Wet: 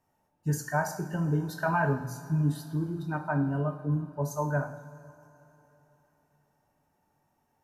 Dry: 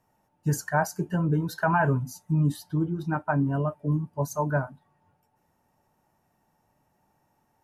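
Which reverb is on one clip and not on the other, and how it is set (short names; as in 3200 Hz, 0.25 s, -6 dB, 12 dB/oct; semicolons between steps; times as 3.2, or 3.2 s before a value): two-slope reverb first 0.56 s, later 3.6 s, from -17 dB, DRR 4 dB; gain -5 dB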